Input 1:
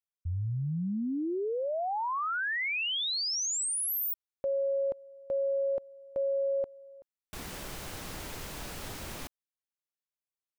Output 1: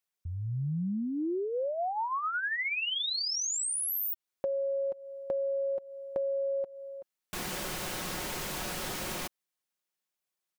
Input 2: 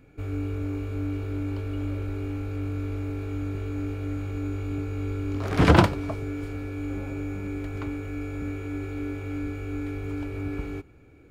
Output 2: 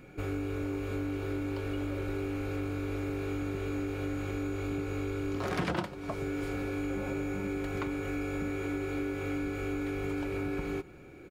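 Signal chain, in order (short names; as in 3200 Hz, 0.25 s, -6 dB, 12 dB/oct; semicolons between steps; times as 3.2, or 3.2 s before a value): low shelf 110 Hz -9.5 dB; comb 5.5 ms, depth 41%; compressor 8:1, threshold -36 dBFS; gain +6 dB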